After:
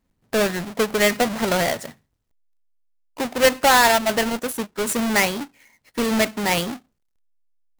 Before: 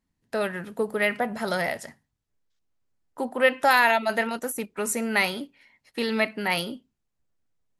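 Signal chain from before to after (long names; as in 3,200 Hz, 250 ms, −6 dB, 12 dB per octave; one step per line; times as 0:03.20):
each half-wave held at its own peak
speech leveller within 3 dB 2 s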